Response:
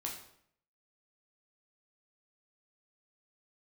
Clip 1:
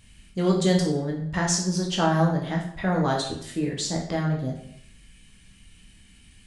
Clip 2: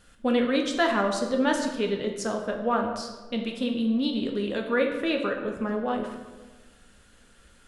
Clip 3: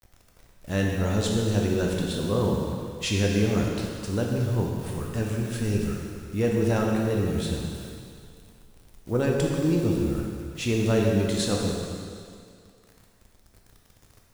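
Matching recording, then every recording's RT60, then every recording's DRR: 1; 0.65 s, 1.3 s, 2.3 s; -1.5 dB, 2.0 dB, -1.5 dB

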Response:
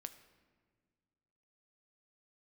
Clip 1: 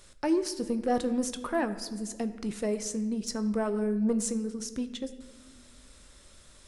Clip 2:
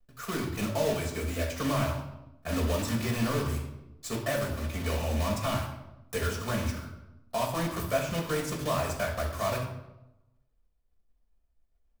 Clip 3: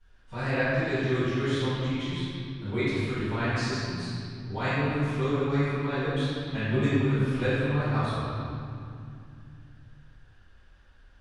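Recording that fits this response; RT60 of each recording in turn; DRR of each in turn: 1; 1.7 s, 0.95 s, 2.5 s; 9.5 dB, -1.5 dB, -17.0 dB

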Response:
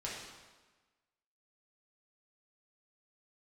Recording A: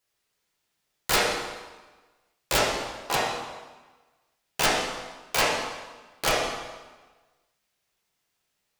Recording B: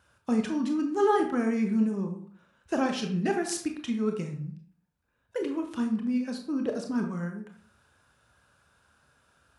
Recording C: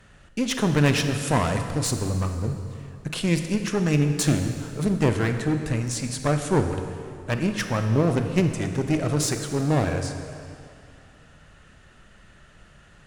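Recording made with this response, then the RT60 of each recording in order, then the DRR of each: A; 1.3 s, 0.50 s, 2.4 s; -6.0 dB, 3.5 dB, 6.5 dB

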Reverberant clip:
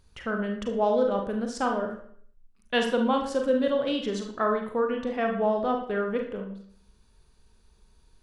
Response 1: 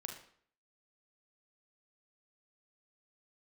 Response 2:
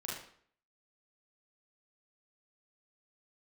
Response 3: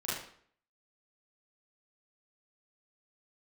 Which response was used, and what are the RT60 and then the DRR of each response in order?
1; 0.60 s, 0.60 s, 0.60 s; 2.5 dB, -5.5 dB, -9.5 dB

